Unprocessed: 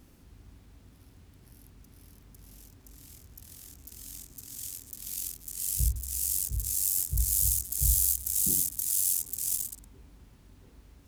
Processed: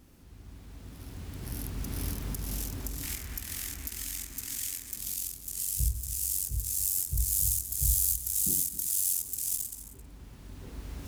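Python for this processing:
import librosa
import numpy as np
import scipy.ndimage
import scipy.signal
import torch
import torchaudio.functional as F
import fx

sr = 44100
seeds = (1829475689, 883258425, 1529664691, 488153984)

y = fx.recorder_agc(x, sr, target_db=-19.0, rise_db_per_s=12.0, max_gain_db=30)
y = fx.graphic_eq(y, sr, hz=(125, 500, 2000), db=(-7, -4, 10), at=(3.03, 4.97))
y = y + 10.0 ** (-15.0 / 20.0) * np.pad(y, (int(266 * sr / 1000.0), 0))[:len(y)]
y = F.gain(torch.from_numpy(y), -1.5).numpy()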